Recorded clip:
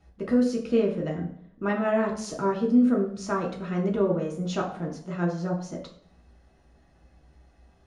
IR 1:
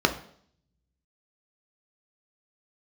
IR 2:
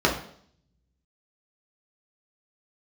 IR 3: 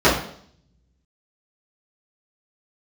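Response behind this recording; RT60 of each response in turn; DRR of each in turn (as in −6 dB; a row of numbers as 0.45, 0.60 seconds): 2; 0.60, 0.60, 0.60 seconds; 4.5, −2.5, −12.0 decibels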